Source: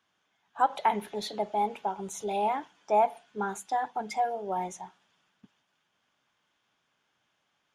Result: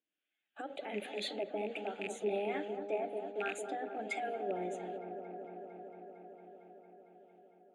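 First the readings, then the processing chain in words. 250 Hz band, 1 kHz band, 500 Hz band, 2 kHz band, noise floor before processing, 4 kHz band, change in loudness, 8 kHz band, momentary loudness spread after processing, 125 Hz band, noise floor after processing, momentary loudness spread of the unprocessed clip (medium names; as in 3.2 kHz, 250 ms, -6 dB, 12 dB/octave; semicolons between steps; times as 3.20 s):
-3.5 dB, -14.0 dB, -4.0 dB, -2.0 dB, -77 dBFS, -2.5 dB, -9.0 dB, -9.5 dB, 18 LU, no reading, under -85 dBFS, 10 LU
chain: rattle on loud lows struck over -38 dBFS, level -32 dBFS; gate -53 dBFS, range -15 dB; treble shelf 6.4 kHz +6 dB; peak limiter -24 dBFS, peak gain reduction 10.5 dB; vibrato 3.2 Hz 19 cents; static phaser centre 2.4 kHz, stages 4; harmonic tremolo 1.3 Hz, depth 70%, crossover 650 Hz; cabinet simulation 280–8100 Hz, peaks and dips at 300 Hz +9 dB, 590 Hz +4 dB, 2.6 kHz +5 dB; on a send: feedback echo behind a low-pass 227 ms, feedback 82%, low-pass 990 Hz, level -6.5 dB; on the sum: trim +2.5 dB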